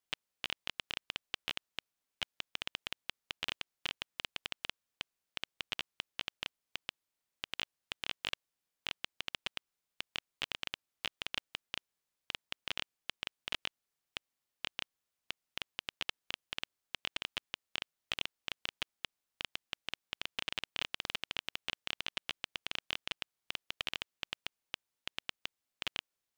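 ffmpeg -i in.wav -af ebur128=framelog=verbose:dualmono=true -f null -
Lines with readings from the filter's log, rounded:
Integrated loudness:
  I:         -38.6 LUFS
  Threshold: -48.6 LUFS
Loudness range:
  LRA:         3.1 LU
  Threshold: -58.8 LUFS
  LRA low:   -40.0 LUFS
  LRA high:  -36.9 LUFS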